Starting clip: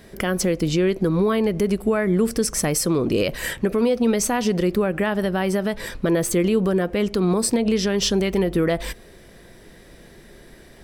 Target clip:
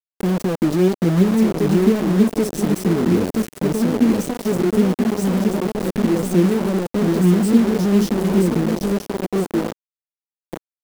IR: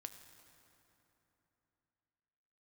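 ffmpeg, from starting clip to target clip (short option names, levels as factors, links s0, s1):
-filter_complex "[0:a]aecho=1:1:979|1958|2937|3916:0.562|0.174|0.054|0.0168,acrossover=split=310|1700[s0][s1][s2];[s1]alimiter=limit=0.0944:level=0:latency=1:release=464[s3];[s0][s3][s2]amix=inputs=3:normalize=0,flanger=delay=3.4:depth=9:regen=30:speed=0.49:shape=triangular,firequalizer=gain_entry='entry(190,0);entry(840,-16);entry(5600,-8)':delay=0.05:min_phase=1,acrusher=bits=4:mix=0:aa=0.000001,equalizer=f=330:w=0.49:g=12"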